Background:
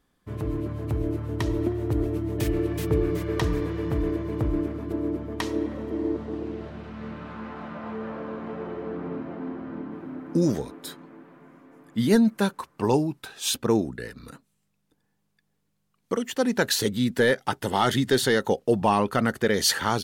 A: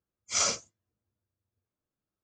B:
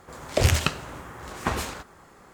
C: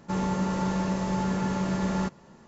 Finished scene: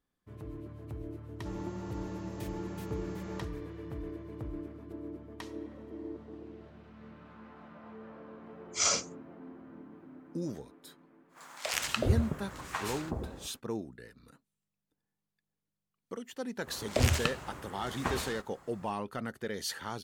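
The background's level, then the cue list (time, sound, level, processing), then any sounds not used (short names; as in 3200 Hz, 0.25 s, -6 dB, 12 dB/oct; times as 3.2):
background -14.5 dB
1.36 add C -16 dB
8.45 add A -1 dB
11.28 add B -6 dB, fades 0.10 s + bands offset in time highs, lows 0.37 s, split 700 Hz
16.59 add B -6.5 dB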